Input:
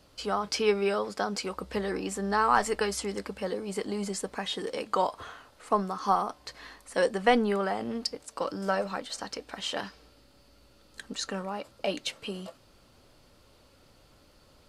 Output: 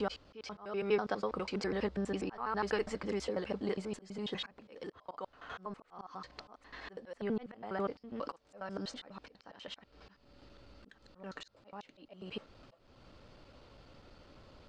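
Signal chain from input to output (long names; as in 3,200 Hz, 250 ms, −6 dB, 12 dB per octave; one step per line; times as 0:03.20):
slices reordered back to front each 82 ms, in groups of 4
downward compressor 1.5 to 1, threshold −44 dBFS, peak gain reduction 9.5 dB
volume swells 351 ms
high-frequency loss of the air 150 metres
level +3 dB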